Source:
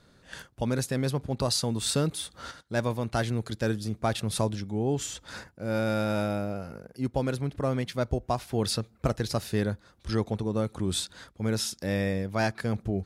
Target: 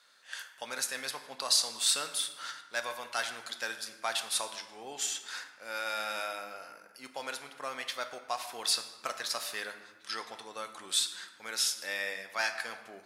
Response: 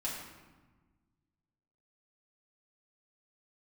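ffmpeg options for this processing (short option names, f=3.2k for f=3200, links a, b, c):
-filter_complex "[0:a]highpass=1.3k,asplit=2[a][b];[1:a]atrim=start_sample=2205[c];[b][c]afir=irnorm=-1:irlink=0,volume=-5.5dB[d];[a][d]amix=inputs=2:normalize=0"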